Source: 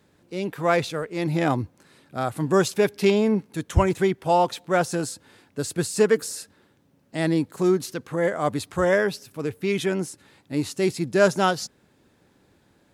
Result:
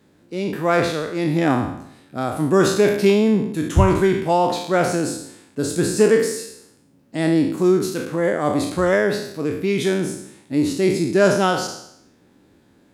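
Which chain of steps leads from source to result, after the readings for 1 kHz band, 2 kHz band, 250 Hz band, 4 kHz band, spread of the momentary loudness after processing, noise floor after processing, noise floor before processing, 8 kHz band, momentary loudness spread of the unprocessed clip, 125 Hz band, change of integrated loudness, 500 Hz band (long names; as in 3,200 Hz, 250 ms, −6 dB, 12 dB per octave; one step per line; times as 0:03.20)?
+3.0 dB, +3.0 dB, +6.0 dB, +3.5 dB, 13 LU, −56 dBFS, −62 dBFS, +3.5 dB, 12 LU, +4.5 dB, +4.5 dB, +4.0 dB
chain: peak hold with a decay on every bin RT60 0.73 s
parametric band 270 Hz +6.5 dB 1.1 octaves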